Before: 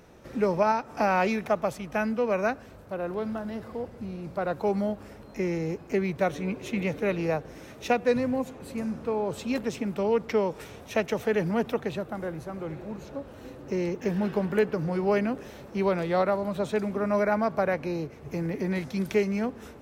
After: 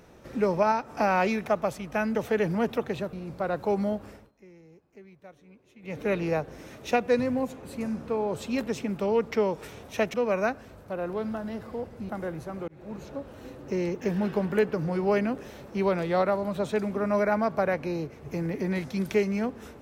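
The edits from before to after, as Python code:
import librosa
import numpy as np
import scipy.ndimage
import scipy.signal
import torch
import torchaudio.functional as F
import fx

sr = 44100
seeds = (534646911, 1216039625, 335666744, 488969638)

y = fx.edit(x, sr, fx.swap(start_s=2.15, length_s=1.95, other_s=11.11, other_length_s=0.98),
    fx.fade_down_up(start_s=5.06, length_s=1.96, db=-23.5, fade_s=0.23),
    fx.fade_in_span(start_s=12.68, length_s=0.28), tone=tone)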